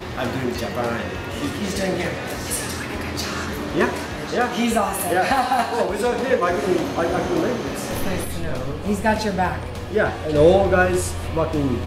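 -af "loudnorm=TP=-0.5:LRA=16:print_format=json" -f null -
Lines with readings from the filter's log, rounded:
"input_i" : "-21.5",
"input_tp" : "-3.6",
"input_lra" : "5.1",
"input_thresh" : "-31.5",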